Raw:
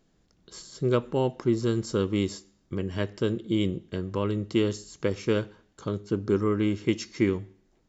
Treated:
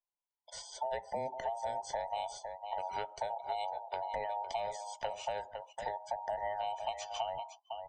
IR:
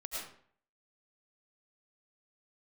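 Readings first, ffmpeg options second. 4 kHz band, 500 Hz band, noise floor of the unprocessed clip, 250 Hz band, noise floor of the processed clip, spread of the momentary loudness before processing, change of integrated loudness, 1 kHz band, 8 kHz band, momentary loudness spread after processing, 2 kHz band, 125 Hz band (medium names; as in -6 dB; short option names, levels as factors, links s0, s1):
-7.5 dB, -11.0 dB, -67 dBFS, -34.0 dB, under -85 dBFS, 9 LU, -11.0 dB, +5.5 dB, no reading, 5 LU, -9.0 dB, -29.5 dB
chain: -filter_complex "[0:a]afftfilt=real='real(if(between(b,1,1008),(2*floor((b-1)/48)+1)*48-b,b),0)':imag='imag(if(between(b,1,1008),(2*floor((b-1)/48)+1)*48-b,b),0)*if(between(b,1,1008),-1,1)':win_size=2048:overlap=0.75,lowshelf=f=140:g=3,acrossover=split=220|6400[s0][s1][s2];[s0]acompressor=threshold=0.00282:ratio=4[s3];[s1]acompressor=threshold=0.0282:ratio=4[s4];[s2]acompressor=threshold=0.00158:ratio=4[s5];[s3][s4][s5]amix=inputs=3:normalize=0,aecho=1:1:506:0.299,agate=range=0.224:threshold=0.00251:ratio=16:detection=peak,equalizer=f=3100:t=o:w=0.32:g=5,acompressor=threshold=0.0158:ratio=2,afftdn=nr=26:nf=-54"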